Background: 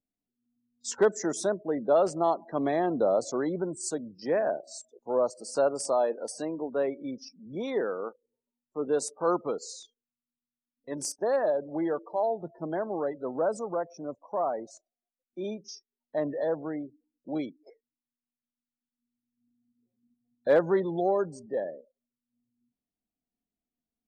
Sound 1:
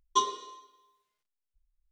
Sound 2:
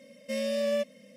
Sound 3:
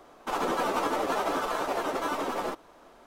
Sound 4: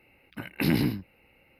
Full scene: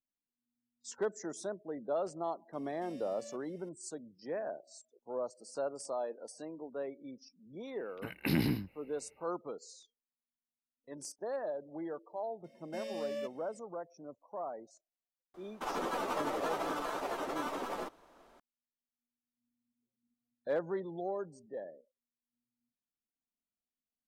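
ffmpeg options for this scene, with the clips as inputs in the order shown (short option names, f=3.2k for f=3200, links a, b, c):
-filter_complex "[2:a]asplit=2[a][b];[0:a]volume=-11.5dB[c];[a]acompressor=threshold=-41dB:ratio=3:attack=0.19:release=226:knee=1:detection=peak[d];[4:a]dynaudnorm=f=110:g=5:m=10dB[e];[b]equalizer=f=11k:t=o:w=0.47:g=-7[f];[d]atrim=end=1.16,asetpts=PTS-STARTPTS,volume=-9.5dB,afade=t=in:d=0.004:c=hsin,afade=t=out:st=1.156:d=0.004:c=hsin,adelay=2530[g];[e]atrim=end=1.59,asetpts=PTS-STARTPTS,volume=-14.5dB,afade=t=in:d=0.004:c=hsin,afade=t=out:st=1.586:d=0.004:c=hsin,adelay=7650[h];[f]atrim=end=1.16,asetpts=PTS-STARTPTS,volume=-11dB,afade=t=in:d=0.004:c=hsin,afade=t=out:st=1.156:d=0.004:c=hsin,adelay=12440[i];[3:a]atrim=end=3.06,asetpts=PTS-STARTPTS,volume=-7.5dB,afade=t=in:d=0.004:c=hsin,afade=t=out:st=3.056:d=0.004:c=hsin,adelay=15340[j];[c][g][h][i][j]amix=inputs=5:normalize=0"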